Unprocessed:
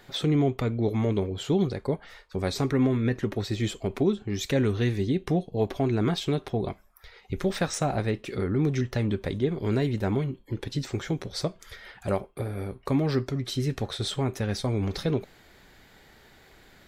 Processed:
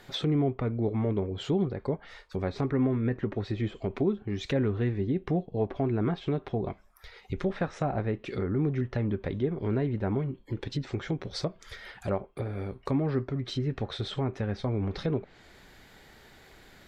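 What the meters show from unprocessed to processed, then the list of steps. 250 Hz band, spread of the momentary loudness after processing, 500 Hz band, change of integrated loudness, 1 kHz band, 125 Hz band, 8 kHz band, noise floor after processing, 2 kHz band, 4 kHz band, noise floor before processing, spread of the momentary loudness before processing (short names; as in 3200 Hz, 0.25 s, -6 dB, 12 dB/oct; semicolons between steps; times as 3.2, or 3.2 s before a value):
-2.5 dB, 7 LU, -2.5 dB, -3.0 dB, -3.0 dB, -2.5 dB, under -10 dB, -57 dBFS, -4.5 dB, -5.5 dB, -56 dBFS, 8 LU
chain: treble ducked by the level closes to 1800 Hz, closed at -24 dBFS; in parallel at -3 dB: compressor, threshold -36 dBFS, peak gain reduction 16.5 dB; on the sum: gain -4 dB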